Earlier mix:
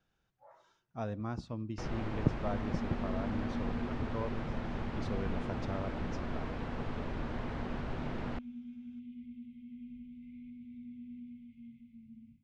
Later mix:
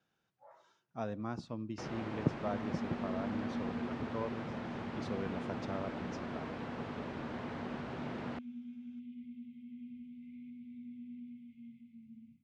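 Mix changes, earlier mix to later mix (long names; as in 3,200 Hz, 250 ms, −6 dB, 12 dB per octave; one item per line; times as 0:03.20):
first sound: send off
master: add high-pass filter 140 Hz 12 dB per octave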